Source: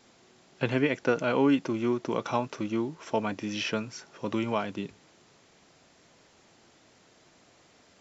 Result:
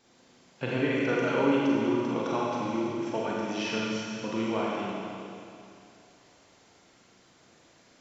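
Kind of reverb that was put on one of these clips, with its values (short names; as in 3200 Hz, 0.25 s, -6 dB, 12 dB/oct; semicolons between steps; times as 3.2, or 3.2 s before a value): Schroeder reverb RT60 2.6 s, combs from 32 ms, DRR -5 dB; gain -5.5 dB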